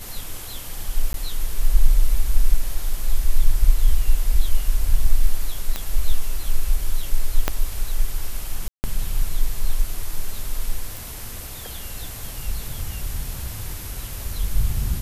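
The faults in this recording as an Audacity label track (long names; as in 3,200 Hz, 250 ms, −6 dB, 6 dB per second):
1.130000	1.140000	drop-out 12 ms
5.760000	5.760000	click −9 dBFS
7.480000	7.480000	click −4 dBFS
8.680000	8.840000	drop-out 159 ms
10.970000	10.970000	click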